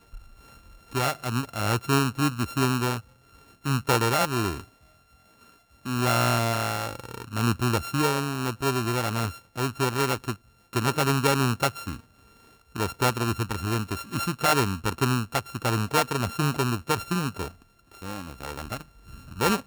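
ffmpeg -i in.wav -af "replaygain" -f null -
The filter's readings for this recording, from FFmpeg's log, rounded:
track_gain = +7.2 dB
track_peak = 0.216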